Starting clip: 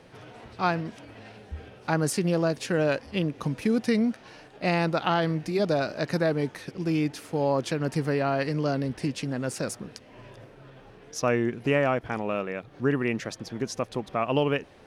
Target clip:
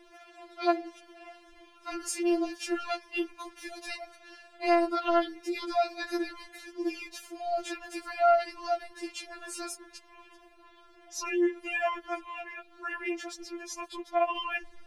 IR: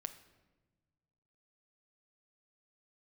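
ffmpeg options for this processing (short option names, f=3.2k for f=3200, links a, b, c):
-af "asubboost=boost=9:cutoff=100,afftfilt=real='re*4*eq(mod(b,16),0)':imag='im*4*eq(mod(b,16),0)':win_size=2048:overlap=0.75"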